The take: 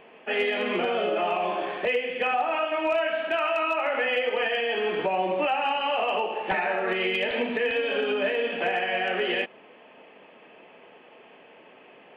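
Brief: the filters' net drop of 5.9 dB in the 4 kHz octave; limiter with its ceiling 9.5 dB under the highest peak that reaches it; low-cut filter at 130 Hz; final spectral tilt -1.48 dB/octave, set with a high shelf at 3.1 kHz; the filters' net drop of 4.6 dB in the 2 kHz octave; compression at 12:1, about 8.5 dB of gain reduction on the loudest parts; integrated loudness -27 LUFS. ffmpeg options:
-af "highpass=130,equalizer=f=2000:t=o:g=-3,highshelf=f=3100:g=-4,equalizer=f=4000:t=o:g=-4.5,acompressor=threshold=0.0282:ratio=12,volume=4.22,alimiter=limit=0.106:level=0:latency=1"

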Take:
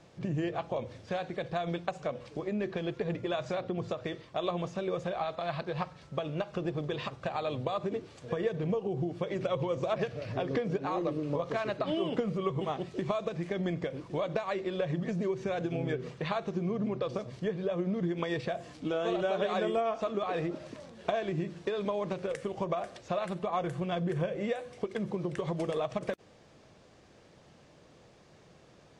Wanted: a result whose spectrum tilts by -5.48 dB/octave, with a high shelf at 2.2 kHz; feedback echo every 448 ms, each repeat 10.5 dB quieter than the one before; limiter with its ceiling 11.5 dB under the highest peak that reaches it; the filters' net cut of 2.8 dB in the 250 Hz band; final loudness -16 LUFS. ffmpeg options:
-af "equalizer=f=250:t=o:g=-4.5,highshelf=f=2200:g=-8.5,alimiter=level_in=1.88:limit=0.0631:level=0:latency=1,volume=0.531,aecho=1:1:448|896|1344:0.299|0.0896|0.0269,volume=13.3"

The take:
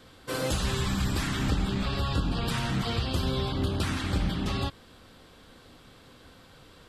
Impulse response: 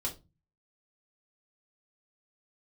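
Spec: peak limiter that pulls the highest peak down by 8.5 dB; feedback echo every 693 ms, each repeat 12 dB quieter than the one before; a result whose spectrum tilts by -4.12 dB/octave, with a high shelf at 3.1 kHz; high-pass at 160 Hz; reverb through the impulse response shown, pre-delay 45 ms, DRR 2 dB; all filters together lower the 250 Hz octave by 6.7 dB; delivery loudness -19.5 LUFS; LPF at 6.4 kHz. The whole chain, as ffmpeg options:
-filter_complex "[0:a]highpass=160,lowpass=6400,equalizer=f=250:t=o:g=-7.5,highshelf=f=3100:g=-6,alimiter=level_in=1.88:limit=0.0631:level=0:latency=1,volume=0.531,aecho=1:1:693|1386|2079:0.251|0.0628|0.0157,asplit=2[s0][s1];[1:a]atrim=start_sample=2205,adelay=45[s2];[s1][s2]afir=irnorm=-1:irlink=0,volume=0.596[s3];[s0][s3]amix=inputs=2:normalize=0,volume=6.31"

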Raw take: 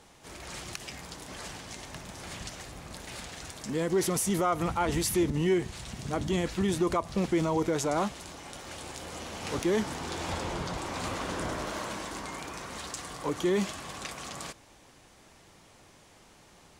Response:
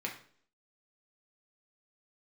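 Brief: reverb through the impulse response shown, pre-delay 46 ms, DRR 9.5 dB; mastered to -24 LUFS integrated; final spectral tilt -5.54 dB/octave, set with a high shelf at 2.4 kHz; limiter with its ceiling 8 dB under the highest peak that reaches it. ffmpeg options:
-filter_complex "[0:a]highshelf=f=2400:g=-9,alimiter=level_in=1.12:limit=0.0631:level=0:latency=1,volume=0.891,asplit=2[s0][s1];[1:a]atrim=start_sample=2205,adelay=46[s2];[s1][s2]afir=irnorm=-1:irlink=0,volume=0.237[s3];[s0][s3]amix=inputs=2:normalize=0,volume=4.22"

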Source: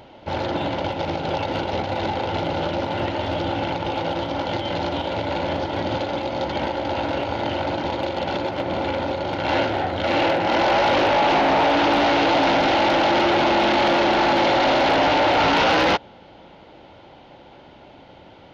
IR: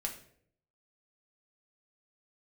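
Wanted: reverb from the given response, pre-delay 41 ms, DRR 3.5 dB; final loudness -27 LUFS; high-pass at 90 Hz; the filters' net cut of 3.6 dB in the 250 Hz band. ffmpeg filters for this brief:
-filter_complex "[0:a]highpass=90,equalizer=f=250:t=o:g=-5,asplit=2[s0][s1];[1:a]atrim=start_sample=2205,adelay=41[s2];[s1][s2]afir=irnorm=-1:irlink=0,volume=0.596[s3];[s0][s3]amix=inputs=2:normalize=0,volume=0.447"

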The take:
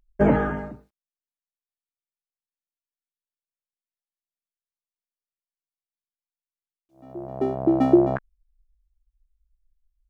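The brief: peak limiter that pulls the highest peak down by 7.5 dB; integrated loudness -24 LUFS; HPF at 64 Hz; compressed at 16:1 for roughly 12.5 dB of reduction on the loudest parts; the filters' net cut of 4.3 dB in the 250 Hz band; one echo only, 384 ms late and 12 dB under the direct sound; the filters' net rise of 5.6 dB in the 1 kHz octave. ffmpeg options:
-af "highpass=64,equalizer=f=250:t=o:g=-7.5,equalizer=f=1000:t=o:g=8.5,acompressor=threshold=0.0501:ratio=16,alimiter=limit=0.0631:level=0:latency=1,aecho=1:1:384:0.251,volume=3.55"

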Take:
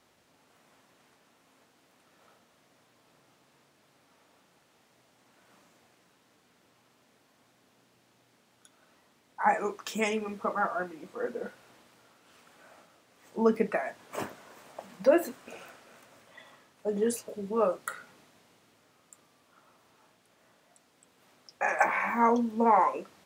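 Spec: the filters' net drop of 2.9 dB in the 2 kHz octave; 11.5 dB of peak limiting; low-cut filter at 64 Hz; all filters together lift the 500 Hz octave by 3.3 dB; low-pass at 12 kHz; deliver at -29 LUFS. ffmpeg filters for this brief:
-af "highpass=64,lowpass=12000,equalizer=f=500:t=o:g=4,equalizer=f=2000:t=o:g=-4,volume=1.33,alimiter=limit=0.141:level=0:latency=1"

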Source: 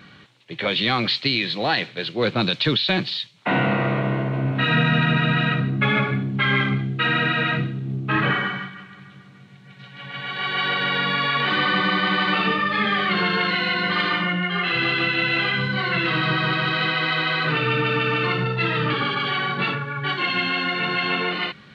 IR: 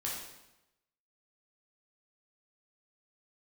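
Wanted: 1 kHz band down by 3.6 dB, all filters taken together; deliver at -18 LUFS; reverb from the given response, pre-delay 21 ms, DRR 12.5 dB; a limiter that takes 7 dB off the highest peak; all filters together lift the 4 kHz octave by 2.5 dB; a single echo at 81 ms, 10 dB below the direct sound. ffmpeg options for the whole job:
-filter_complex "[0:a]equalizer=f=1000:t=o:g=-5,equalizer=f=4000:t=o:g=3.5,alimiter=limit=0.211:level=0:latency=1,aecho=1:1:81:0.316,asplit=2[s0][s1];[1:a]atrim=start_sample=2205,adelay=21[s2];[s1][s2]afir=irnorm=-1:irlink=0,volume=0.178[s3];[s0][s3]amix=inputs=2:normalize=0,volume=1.5"

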